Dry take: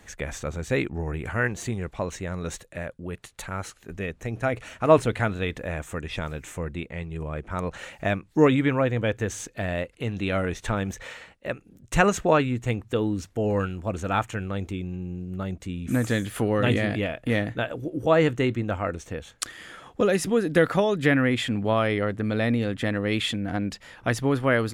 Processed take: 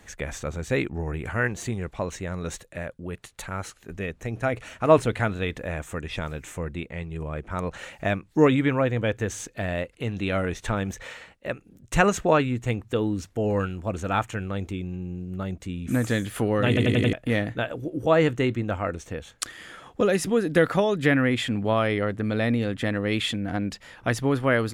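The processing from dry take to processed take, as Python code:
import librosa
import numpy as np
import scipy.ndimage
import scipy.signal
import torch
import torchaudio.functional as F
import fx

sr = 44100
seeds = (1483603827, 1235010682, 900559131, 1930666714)

y = fx.edit(x, sr, fx.stutter_over(start_s=16.68, slice_s=0.09, count=5), tone=tone)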